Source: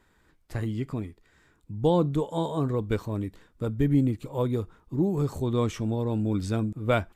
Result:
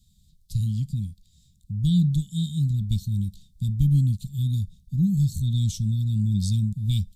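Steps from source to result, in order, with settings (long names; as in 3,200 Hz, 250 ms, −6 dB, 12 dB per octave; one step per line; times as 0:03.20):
Chebyshev band-stop filter 190–3,700 Hz, order 4
level +8 dB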